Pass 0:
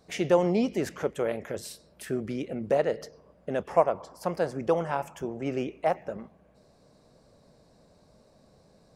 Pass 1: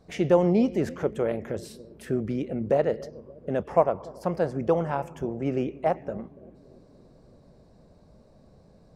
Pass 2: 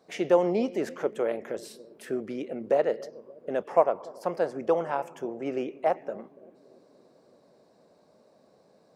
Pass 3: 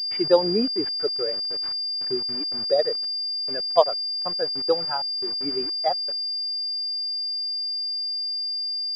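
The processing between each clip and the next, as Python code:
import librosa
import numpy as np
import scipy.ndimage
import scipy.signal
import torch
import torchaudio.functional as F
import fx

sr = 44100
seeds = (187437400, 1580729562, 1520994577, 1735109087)

y1 = fx.tilt_eq(x, sr, slope=-2.0)
y1 = fx.echo_bbd(y1, sr, ms=285, stages=1024, feedback_pct=64, wet_db=-19)
y2 = scipy.signal.sosfilt(scipy.signal.butter(2, 340.0, 'highpass', fs=sr, output='sos'), y1)
y3 = fx.bin_expand(y2, sr, power=2.0)
y3 = fx.quant_dither(y3, sr, seeds[0], bits=8, dither='none')
y3 = fx.pwm(y3, sr, carrier_hz=4800.0)
y3 = F.gain(torch.from_numpy(y3), 6.0).numpy()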